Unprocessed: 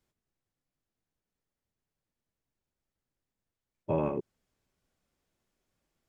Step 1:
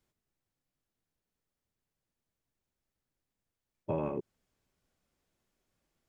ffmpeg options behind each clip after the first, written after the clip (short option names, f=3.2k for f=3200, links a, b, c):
-af "acompressor=threshold=-32dB:ratio=2"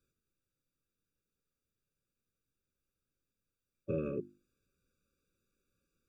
-af "bandreject=f=50:t=h:w=6,bandreject=f=100:t=h:w=6,bandreject=f=150:t=h:w=6,bandreject=f=200:t=h:w=6,bandreject=f=250:t=h:w=6,bandreject=f=300:t=h:w=6,bandreject=f=350:t=h:w=6,afftfilt=real='re*eq(mod(floor(b*sr/1024/560),2),0)':imag='im*eq(mod(floor(b*sr/1024/560),2),0)':win_size=1024:overlap=0.75"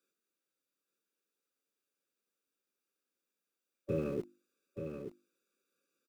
-filter_complex "[0:a]acrossover=split=250|340|1700[a][b][c][d];[a]aeval=exprs='val(0)*gte(abs(val(0)),0.00376)':c=same[e];[e][b][c][d]amix=inputs=4:normalize=0,aecho=1:1:880:0.422,volume=1dB"